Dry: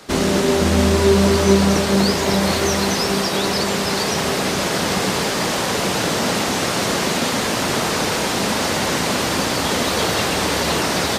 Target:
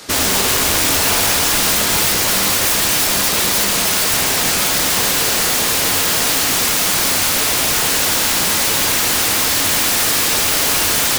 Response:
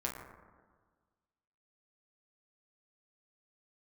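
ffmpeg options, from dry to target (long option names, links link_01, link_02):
-filter_complex "[0:a]highshelf=frequency=2500:gain=10.5,aeval=exprs='(mod(3.76*val(0)+1,2)-1)/3.76':channel_layout=same,asplit=2[link_01][link_02];[1:a]atrim=start_sample=2205,asetrate=61740,aresample=44100[link_03];[link_02][link_03]afir=irnorm=-1:irlink=0,volume=-4.5dB[link_04];[link_01][link_04]amix=inputs=2:normalize=0,volume=-1.5dB"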